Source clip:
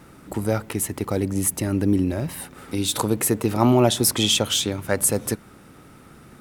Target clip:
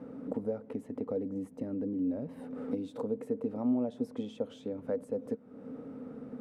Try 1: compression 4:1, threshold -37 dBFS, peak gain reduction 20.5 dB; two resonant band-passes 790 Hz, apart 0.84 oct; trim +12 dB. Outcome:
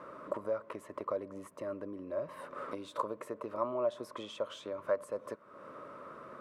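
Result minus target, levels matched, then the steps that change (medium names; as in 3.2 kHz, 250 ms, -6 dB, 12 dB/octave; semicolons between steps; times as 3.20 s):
1 kHz band +13.0 dB
change: two resonant band-passes 350 Hz, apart 0.84 oct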